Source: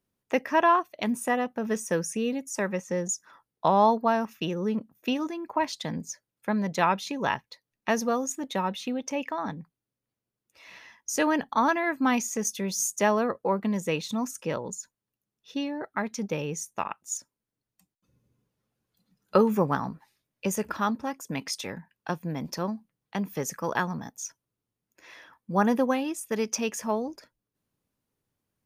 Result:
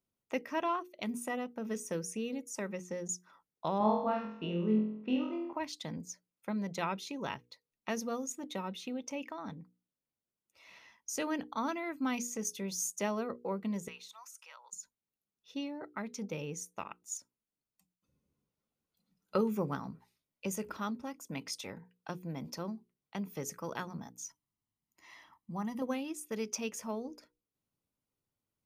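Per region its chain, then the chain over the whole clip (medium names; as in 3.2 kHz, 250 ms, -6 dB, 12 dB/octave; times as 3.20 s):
3.78–5.53 s: Gaussian low-pass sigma 2.5 samples + flutter echo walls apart 4 m, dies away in 0.67 s + tape noise reduction on one side only decoder only
13.88–14.73 s: high-pass 1 kHz 24 dB/octave + compression 2:1, threshold -44 dBFS
24.24–25.82 s: comb 1 ms, depth 71% + compression 1.5:1, threshold -35 dBFS
whole clip: hum notches 60/120/180/240/300/360/420/480 Hz; dynamic bell 870 Hz, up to -6 dB, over -37 dBFS, Q 1.1; band-stop 1.7 kHz, Q 7.3; trim -7.5 dB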